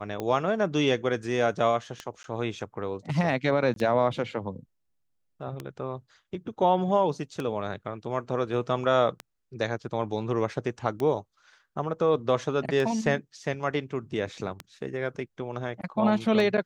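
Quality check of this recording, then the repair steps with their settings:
scratch tick 33 1/3 rpm −18 dBFS
0:02.23–0:02.24: drop-out 12 ms
0:03.74–0:03.76: drop-out 22 ms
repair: click removal
repair the gap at 0:02.23, 12 ms
repair the gap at 0:03.74, 22 ms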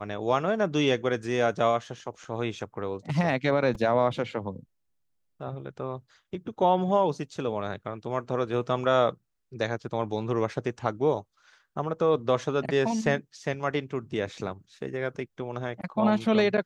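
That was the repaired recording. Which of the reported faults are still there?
none of them is left

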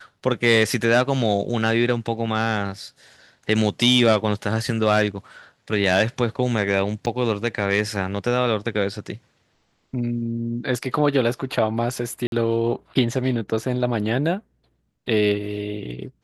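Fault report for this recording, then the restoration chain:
0:07.06–0:07.07: drop-out 8.1 ms
0:12.27–0:12.32: drop-out 52 ms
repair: repair the gap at 0:07.06, 8.1 ms
repair the gap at 0:12.27, 52 ms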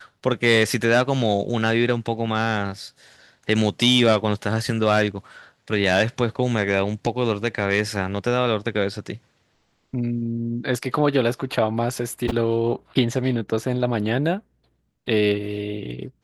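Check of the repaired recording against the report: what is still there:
none of them is left

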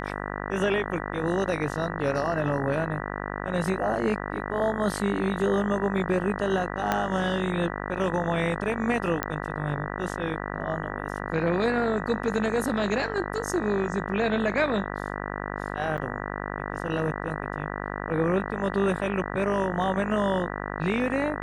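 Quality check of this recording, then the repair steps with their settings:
mains buzz 50 Hz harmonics 39 −33 dBFS
0:06.92: click −10 dBFS
0:09.23: click −10 dBFS
0:15.97–0:15.98: drop-out 8.9 ms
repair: click removal
hum removal 50 Hz, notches 39
repair the gap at 0:15.97, 8.9 ms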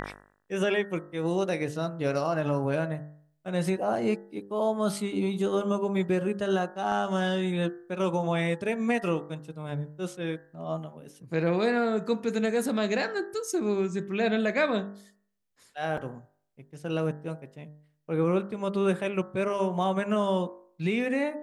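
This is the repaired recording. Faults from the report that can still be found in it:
0:06.92: click

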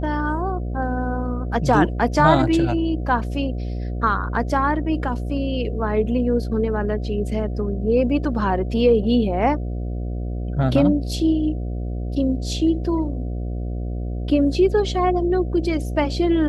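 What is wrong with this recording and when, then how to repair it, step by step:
mains buzz 60 Hz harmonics 12 −26 dBFS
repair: hum removal 60 Hz, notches 12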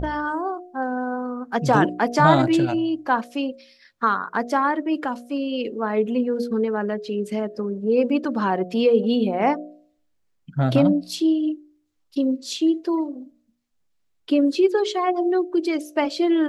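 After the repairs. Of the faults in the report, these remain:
none of them is left

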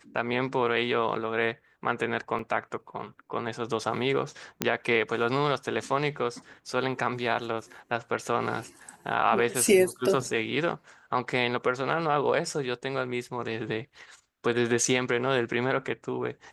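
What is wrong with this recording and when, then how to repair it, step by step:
0:02.39: drop-out 2.5 ms
0:04.62: click −7 dBFS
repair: click removal
repair the gap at 0:02.39, 2.5 ms

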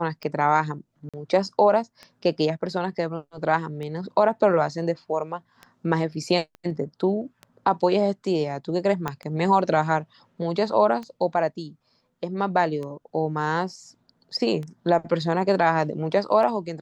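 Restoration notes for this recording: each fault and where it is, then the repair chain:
scratch tick 33 1/3 rpm −23 dBFS
0:01.09–0:01.14: drop-out 46 ms
0:06.55: click −29 dBFS
0:09.08: click −13 dBFS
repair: click removal
repair the gap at 0:01.09, 46 ms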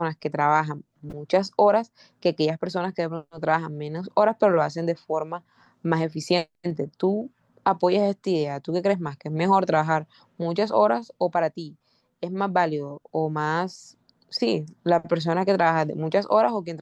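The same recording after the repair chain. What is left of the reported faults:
0:06.55: click
0:09.08: click

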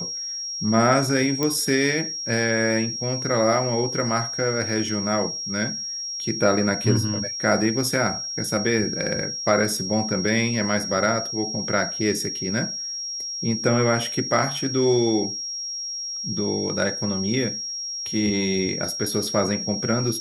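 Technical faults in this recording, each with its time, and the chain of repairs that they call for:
whistle 5,600 Hz −28 dBFS
0:01.43: click −9 dBFS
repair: click removal
notch filter 5,600 Hz, Q 30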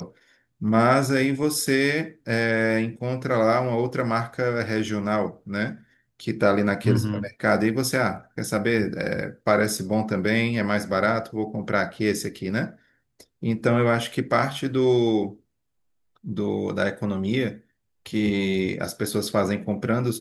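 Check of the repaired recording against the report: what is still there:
none of them is left

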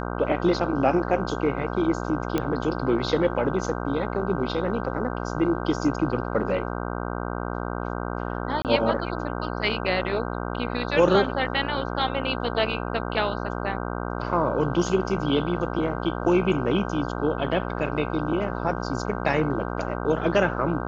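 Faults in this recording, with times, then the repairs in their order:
mains buzz 60 Hz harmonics 26 −30 dBFS
0:02.38: click −11 dBFS
0:08.62–0:08.65: drop-out 28 ms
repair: click removal
hum removal 60 Hz, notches 26
repair the gap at 0:08.62, 28 ms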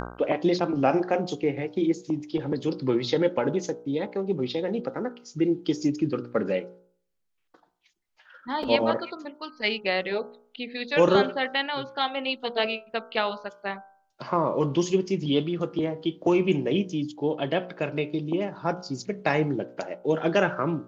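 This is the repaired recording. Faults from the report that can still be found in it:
none of them is left

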